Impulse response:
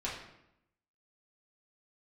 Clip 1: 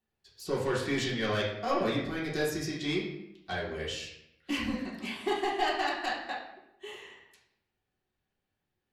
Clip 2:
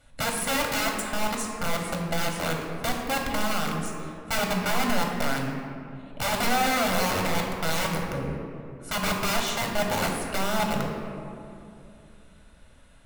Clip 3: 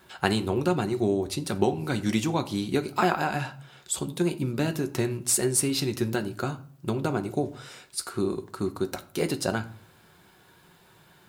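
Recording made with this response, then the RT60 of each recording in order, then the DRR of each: 1; 0.80, 2.7, 0.50 seconds; −6.5, 0.5, 7.5 decibels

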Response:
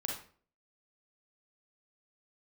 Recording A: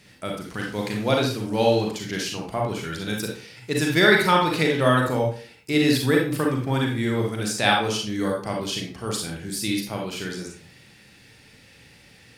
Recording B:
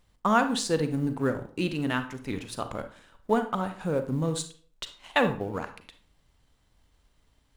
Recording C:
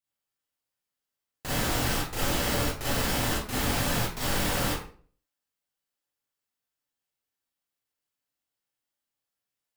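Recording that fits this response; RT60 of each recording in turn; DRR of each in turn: A; 0.45, 0.45, 0.45 seconds; −0.5, 8.5, −7.5 decibels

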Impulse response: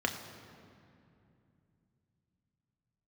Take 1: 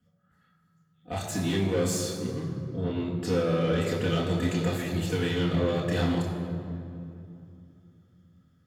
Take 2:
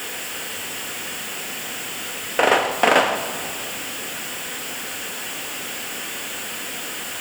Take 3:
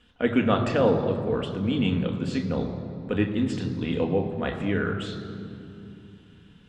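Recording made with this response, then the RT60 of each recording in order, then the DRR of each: 3; 2.6, 2.7, 2.6 seconds; −4.0, 8.5, 3.0 decibels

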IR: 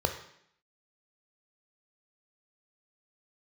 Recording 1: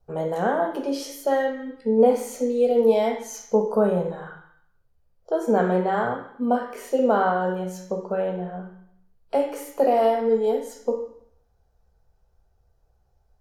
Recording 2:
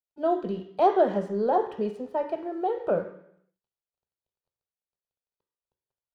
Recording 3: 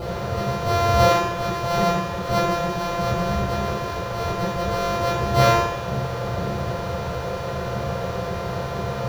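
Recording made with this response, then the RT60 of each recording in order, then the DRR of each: 2; 0.70, 0.70, 0.70 seconds; 2.0, 6.0, −5.5 decibels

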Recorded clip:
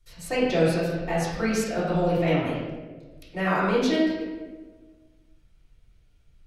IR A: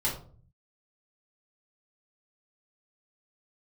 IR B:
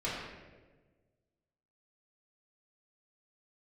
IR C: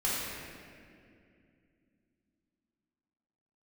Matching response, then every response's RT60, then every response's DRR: B; 0.45, 1.3, 2.4 seconds; −6.5, −9.5, −9.5 decibels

